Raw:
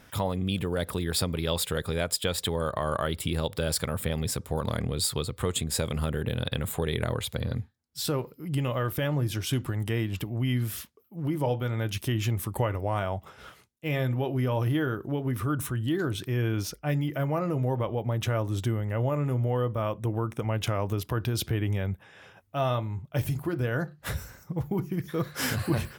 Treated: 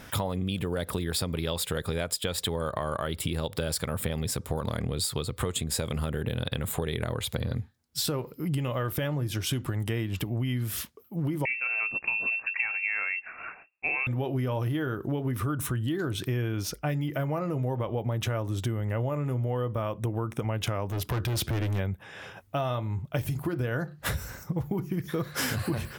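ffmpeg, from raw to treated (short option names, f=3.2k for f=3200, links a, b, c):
-filter_complex "[0:a]asettb=1/sr,asplit=3[a][b][c];[a]atrim=end=11.454[d];[b]atrim=start=11.45:end=14.07,asetpts=PTS-STARTPTS,afade=t=in:d=0.004:c=qsin,afade=t=out:st=2.616:d=0.004:c=qsin,lowpass=f=2.4k:t=q:w=0.5098,lowpass=f=2.4k:t=q:w=0.6013,lowpass=f=2.4k:t=q:w=0.9,lowpass=f=2.4k:t=q:w=2.563,afreqshift=-2800[e];[c]atrim=start=14.066[f];[d][e]acrossfade=d=0.004:c1=hsin:c2=qsin[g];[g][f]acrossfade=d=0.004:c1=qsin:c2=hsin,asplit=3[h][i][j];[h]afade=t=out:st=20.88:d=0.02[k];[i]asoftclip=type=hard:threshold=-30dB,afade=t=in:st=20.88:d=0.02,afade=t=out:st=21.78:d=0.02[l];[j]afade=t=in:st=21.78:d=0.02[m];[k][l][m]amix=inputs=3:normalize=0,acompressor=threshold=-35dB:ratio=6,volume=8dB"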